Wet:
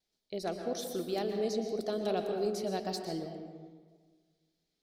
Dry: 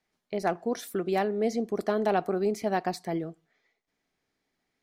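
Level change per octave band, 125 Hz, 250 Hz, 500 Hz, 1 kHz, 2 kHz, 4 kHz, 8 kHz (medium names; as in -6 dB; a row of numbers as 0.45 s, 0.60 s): -6.0 dB, -6.0 dB, -5.0 dB, -9.5 dB, -11.0 dB, +2.0 dB, -0.5 dB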